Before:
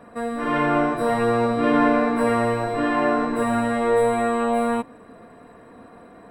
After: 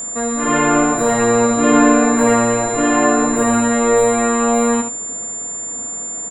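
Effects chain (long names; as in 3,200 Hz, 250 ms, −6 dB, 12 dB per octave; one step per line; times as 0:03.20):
single-tap delay 72 ms −8.5 dB
steady tone 7,200 Hz −29 dBFS
level +5.5 dB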